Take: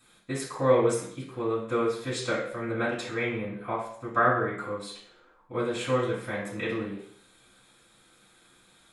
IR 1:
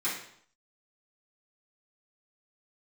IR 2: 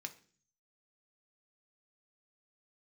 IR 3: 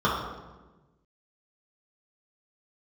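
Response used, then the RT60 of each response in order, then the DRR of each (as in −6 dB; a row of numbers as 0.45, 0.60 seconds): 1; 0.65, 0.45, 1.2 seconds; −12.0, 5.0, −8.0 decibels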